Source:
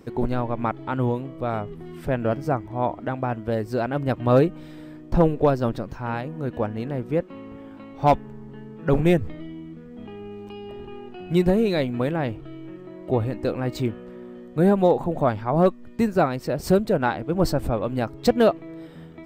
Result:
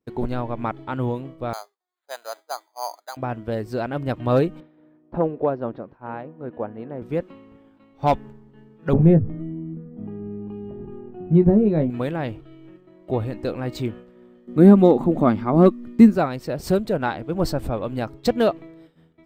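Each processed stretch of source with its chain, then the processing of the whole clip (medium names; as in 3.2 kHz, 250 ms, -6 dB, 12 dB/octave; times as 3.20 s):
1.53–3.17 s: high-pass 710 Hz 24 dB/octave + treble shelf 2.7 kHz -9.5 dB + careless resampling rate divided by 8×, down filtered, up hold
4.60–7.02 s: upward compressor, threshold -32 dBFS + band-pass filter 600 Hz, Q 0.52 + distance through air 250 m
8.93–11.90 s: Bessel low-pass 860 Hz + peaking EQ 160 Hz +8.5 dB 1.9 oct + doubling 19 ms -8 dB
14.47–16.15 s: peaking EQ 220 Hz +12 dB 0.63 oct + small resonant body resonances 330/1200/2100 Hz, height 8 dB, ringing for 25 ms
whole clip: expander -32 dBFS; peaking EQ 3.7 kHz +2.5 dB; trim -1.5 dB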